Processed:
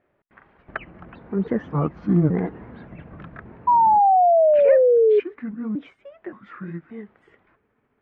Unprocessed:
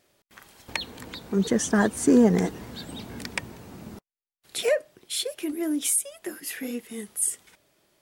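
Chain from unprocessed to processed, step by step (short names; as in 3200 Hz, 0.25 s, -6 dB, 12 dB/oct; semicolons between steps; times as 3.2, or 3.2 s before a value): trilling pitch shifter -6 st, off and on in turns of 0.575 s; inverse Chebyshev low-pass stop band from 9900 Hz, stop band 80 dB; painted sound fall, 3.67–5.2, 410–990 Hz -15 dBFS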